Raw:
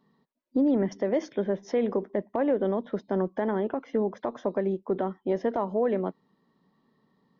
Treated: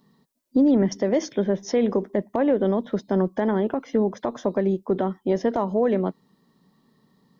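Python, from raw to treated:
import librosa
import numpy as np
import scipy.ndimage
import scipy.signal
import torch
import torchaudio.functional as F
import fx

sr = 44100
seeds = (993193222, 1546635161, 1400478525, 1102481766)

y = fx.bass_treble(x, sr, bass_db=5, treble_db=12)
y = y * 10.0 ** (3.5 / 20.0)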